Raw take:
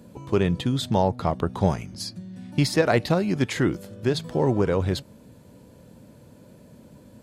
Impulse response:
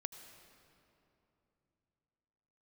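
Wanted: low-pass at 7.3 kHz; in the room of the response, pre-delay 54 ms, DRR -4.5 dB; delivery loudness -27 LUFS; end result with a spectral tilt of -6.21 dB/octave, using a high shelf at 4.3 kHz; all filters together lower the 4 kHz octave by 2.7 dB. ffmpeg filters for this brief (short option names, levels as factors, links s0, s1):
-filter_complex "[0:a]lowpass=7300,equalizer=f=4000:t=o:g=-4.5,highshelf=f=4300:g=3,asplit=2[s0][s1];[1:a]atrim=start_sample=2205,adelay=54[s2];[s1][s2]afir=irnorm=-1:irlink=0,volume=2.24[s3];[s0][s3]amix=inputs=2:normalize=0,volume=0.398"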